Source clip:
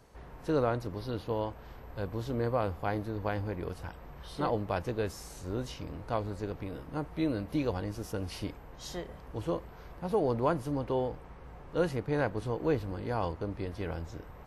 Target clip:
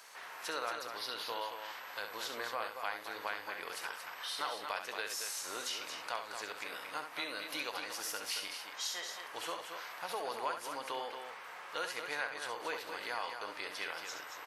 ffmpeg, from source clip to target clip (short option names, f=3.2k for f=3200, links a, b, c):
-filter_complex "[0:a]highpass=1.5k,acompressor=threshold=-53dB:ratio=2.5,asplit=2[a][b];[b]aecho=0:1:67.06|227.4:0.398|0.447[c];[a][c]amix=inputs=2:normalize=0,volume=13.5dB"